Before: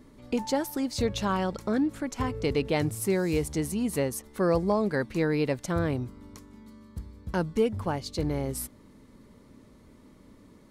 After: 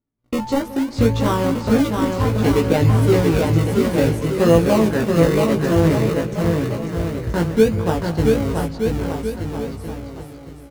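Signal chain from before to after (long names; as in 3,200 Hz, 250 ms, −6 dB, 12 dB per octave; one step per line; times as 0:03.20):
low-pass filter 2,100 Hz 6 dB per octave
noise gate −43 dBFS, range −39 dB
parametric band 110 Hz +7.5 dB 0.29 octaves
in parallel at −5 dB: sample-and-hold swept by an LFO 37×, swing 100% 0.61 Hz
on the sum: double-tracking delay 18 ms −3 dB
bouncing-ball delay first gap 680 ms, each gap 0.8×, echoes 5
on a send at −13.5 dB: convolution reverb, pre-delay 174 ms
on the sum: every ending faded ahead of time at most 200 dB per second
level +4 dB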